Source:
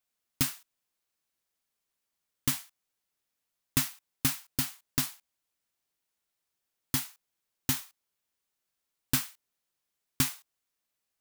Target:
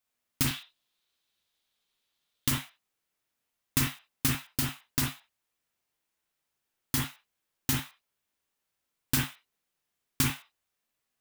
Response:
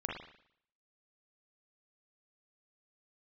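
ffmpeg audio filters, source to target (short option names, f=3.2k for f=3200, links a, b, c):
-filter_complex "[0:a]asettb=1/sr,asplit=3[a][b][c];[a]atrim=end=0.474[d];[b]atrim=start=0.47:end=2.48,asetpts=PTS-STARTPTS,afade=t=in:d=0.004:c=qsin,afade=t=out:st=2.006:d=0.004:c=qsin,equalizer=f=3.7k:w=1.9:g=13[e];[c]atrim=start=2.476[f];[d][e]acrossfade=d=0.004:c1=hsin:c2=qsin[g];[g][f]acrossfade=d=0.004:c1=qsin:c2=hsin[h];[1:a]atrim=start_sample=2205,atrim=end_sample=4410[i];[h][i]afir=irnorm=-1:irlink=0,volume=1.5dB"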